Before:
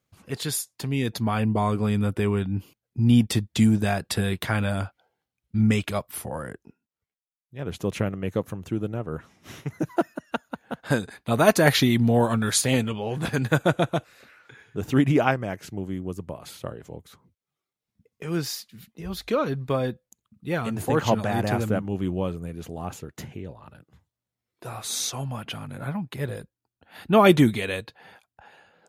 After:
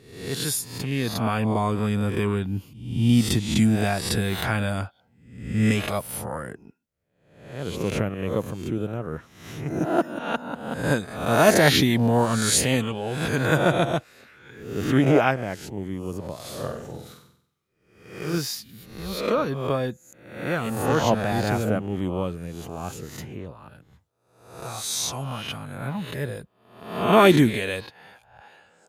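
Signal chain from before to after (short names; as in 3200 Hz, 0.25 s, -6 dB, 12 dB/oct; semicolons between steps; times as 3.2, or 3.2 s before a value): spectral swells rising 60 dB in 0.68 s; 16.35–18.38 flutter echo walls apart 8.1 m, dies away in 0.65 s; gain -1 dB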